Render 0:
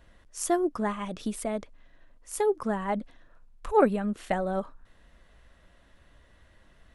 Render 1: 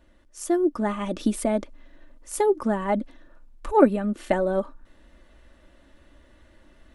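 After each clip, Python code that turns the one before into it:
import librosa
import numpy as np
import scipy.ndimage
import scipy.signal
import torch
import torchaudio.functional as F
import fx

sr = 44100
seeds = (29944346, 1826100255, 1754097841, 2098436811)

y = fx.peak_eq(x, sr, hz=320.0, db=7.0, octaves=1.3)
y = y + 0.43 * np.pad(y, (int(3.4 * sr / 1000.0), 0))[:len(y)]
y = fx.rider(y, sr, range_db=4, speed_s=0.5)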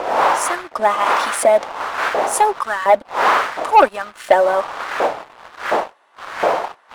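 y = fx.dmg_wind(x, sr, seeds[0], corner_hz=610.0, level_db=-28.0)
y = fx.filter_lfo_highpass(y, sr, shape='saw_up', hz=1.4, low_hz=610.0, high_hz=1600.0, q=1.7)
y = fx.leveller(y, sr, passes=2)
y = y * librosa.db_to_amplitude(3.5)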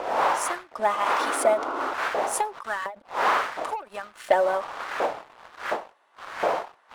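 y = fx.spec_paint(x, sr, seeds[1], shape='noise', start_s=1.19, length_s=0.75, low_hz=250.0, high_hz=1500.0, level_db=-23.0)
y = fx.end_taper(y, sr, db_per_s=180.0)
y = y * librosa.db_to_amplitude(-7.5)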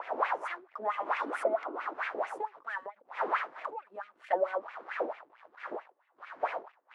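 y = fx.filter_lfo_bandpass(x, sr, shape='sine', hz=4.5, low_hz=290.0, high_hz=2400.0, q=3.8)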